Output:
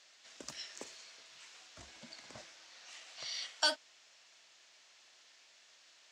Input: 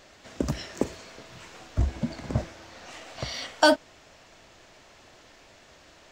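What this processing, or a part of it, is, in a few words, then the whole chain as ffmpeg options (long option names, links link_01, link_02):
piezo pickup straight into a mixer: -af "lowpass=5500,aderivative,volume=1.5dB"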